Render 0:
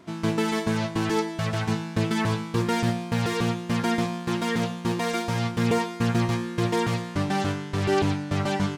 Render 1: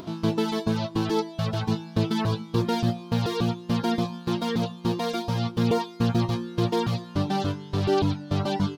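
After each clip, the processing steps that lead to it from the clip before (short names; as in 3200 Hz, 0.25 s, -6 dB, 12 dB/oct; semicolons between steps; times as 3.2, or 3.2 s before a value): reverb removal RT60 0.54 s; graphic EQ 2000/4000/8000 Hz -11/+6/-11 dB; upward compressor, threshold -34 dBFS; gain +1.5 dB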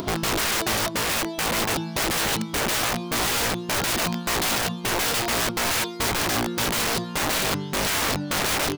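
wrapped overs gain 27.5 dB; gain +8.5 dB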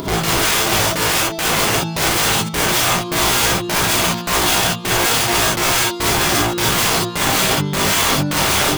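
non-linear reverb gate 80 ms rising, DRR -3 dB; gain +3 dB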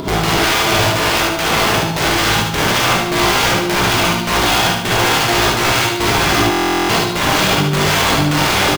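median filter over 5 samples; feedback echo 74 ms, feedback 48%, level -5 dB; stuck buffer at 6.5, samples 1024, times 16; gain +2 dB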